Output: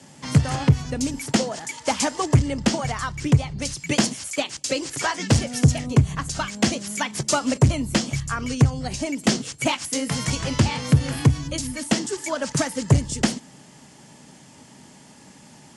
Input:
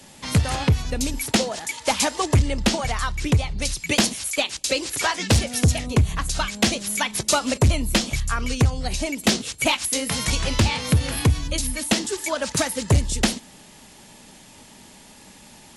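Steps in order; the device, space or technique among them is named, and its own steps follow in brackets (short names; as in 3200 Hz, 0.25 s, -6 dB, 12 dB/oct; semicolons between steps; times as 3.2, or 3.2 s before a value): car door speaker (speaker cabinet 83–9200 Hz, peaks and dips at 140 Hz +10 dB, 270 Hz +4 dB, 2500 Hz -4 dB, 3800 Hz -7 dB); gain -1 dB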